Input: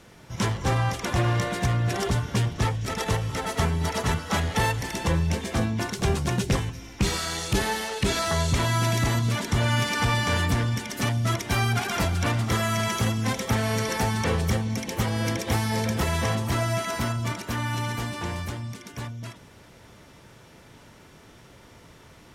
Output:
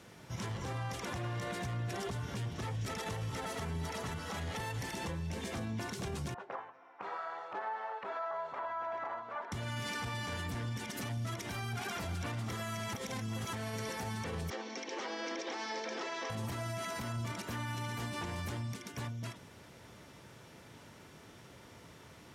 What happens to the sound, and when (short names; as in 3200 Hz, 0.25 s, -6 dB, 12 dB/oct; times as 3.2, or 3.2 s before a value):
6.34–9.52 Butterworth band-pass 930 Hz, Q 1.2
12.93–13.53 reverse
14.5–16.3 elliptic band-pass 310–5800 Hz
whole clip: HPF 72 Hz; compressor, threshold -26 dBFS; limiter -26.5 dBFS; gain -4 dB